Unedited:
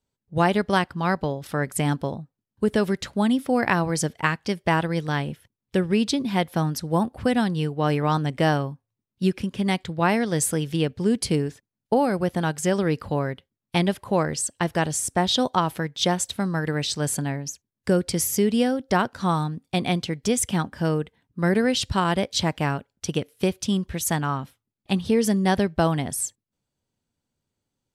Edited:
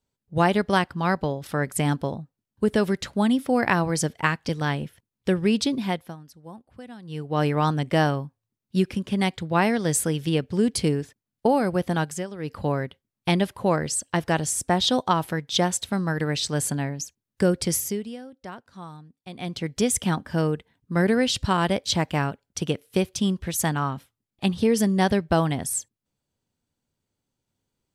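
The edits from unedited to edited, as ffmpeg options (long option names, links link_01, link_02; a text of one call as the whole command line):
ffmpeg -i in.wav -filter_complex "[0:a]asplit=8[link_01][link_02][link_03][link_04][link_05][link_06][link_07][link_08];[link_01]atrim=end=4.492[link_09];[link_02]atrim=start=4.958:end=6.63,asetpts=PTS-STARTPTS,afade=type=out:start_time=1.272:duration=0.4:silence=0.1[link_10];[link_03]atrim=start=6.63:end=7.49,asetpts=PTS-STARTPTS,volume=-20dB[link_11];[link_04]atrim=start=7.49:end=12.74,asetpts=PTS-STARTPTS,afade=type=in:duration=0.4:silence=0.1,afade=type=out:start_time=5.01:duration=0.24:silence=0.199526[link_12];[link_05]atrim=start=12.74:end=12.85,asetpts=PTS-STARTPTS,volume=-14dB[link_13];[link_06]atrim=start=12.85:end=18.68,asetpts=PTS-STARTPTS,afade=type=in:duration=0.24:silence=0.199526,afade=type=out:start_time=5.37:duration=0.46:curve=qua:silence=0.133352[link_14];[link_07]atrim=start=18.68:end=19.68,asetpts=PTS-STARTPTS,volume=-17.5dB[link_15];[link_08]atrim=start=19.68,asetpts=PTS-STARTPTS,afade=type=in:duration=0.46:curve=qua:silence=0.133352[link_16];[link_10][link_11][link_12][link_13][link_14][link_15][link_16]concat=n=7:v=0:a=1[link_17];[link_09][link_17]acrossfade=duration=0.004:curve1=hsin:curve2=hsin" out.wav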